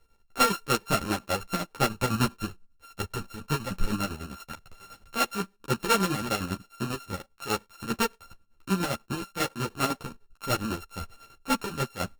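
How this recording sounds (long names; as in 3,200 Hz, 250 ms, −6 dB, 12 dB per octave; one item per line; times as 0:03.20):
a buzz of ramps at a fixed pitch in blocks of 32 samples
chopped level 10 Hz, depth 60%, duty 50%
a shimmering, thickened sound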